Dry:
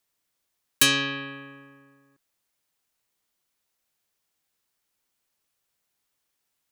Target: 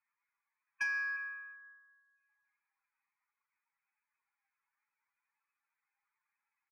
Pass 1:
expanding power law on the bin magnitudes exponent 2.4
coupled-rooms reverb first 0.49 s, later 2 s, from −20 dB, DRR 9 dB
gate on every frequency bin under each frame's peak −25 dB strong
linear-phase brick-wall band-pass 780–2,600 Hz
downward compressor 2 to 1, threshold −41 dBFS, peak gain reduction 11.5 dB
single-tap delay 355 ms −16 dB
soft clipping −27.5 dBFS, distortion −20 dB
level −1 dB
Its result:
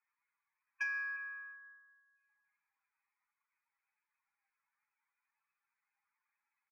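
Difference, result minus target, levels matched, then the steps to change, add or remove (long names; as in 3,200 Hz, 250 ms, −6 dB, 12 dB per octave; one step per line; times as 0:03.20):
downward compressor: peak gain reduction +4 dB
change: downward compressor 2 to 1, threshold −33.5 dBFS, peak gain reduction 8 dB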